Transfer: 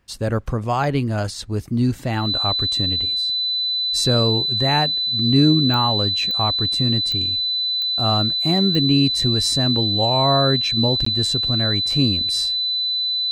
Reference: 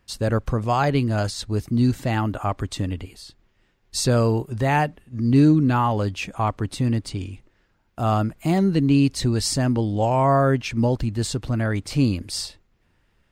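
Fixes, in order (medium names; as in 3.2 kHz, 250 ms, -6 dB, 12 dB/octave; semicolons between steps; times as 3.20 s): de-click; band-stop 4 kHz, Q 30; interpolate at 11.05 s, 14 ms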